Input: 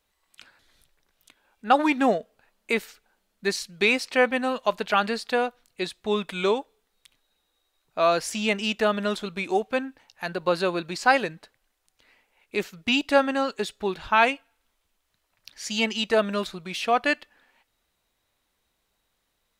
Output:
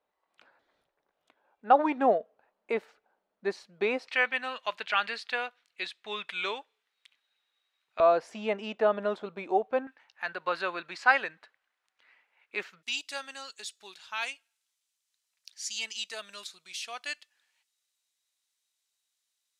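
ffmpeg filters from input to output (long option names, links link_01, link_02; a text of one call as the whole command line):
ffmpeg -i in.wav -af "asetnsamples=nb_out_samples=441:pad=0,asendcmd='4.08 bandpass f 2300;8 bandpass f 660;9.87 bandpass f 1600;12.83 bandpass f 7000',bandpass=frequency=660:width_type=q:width=1.1:csg=0" out.wav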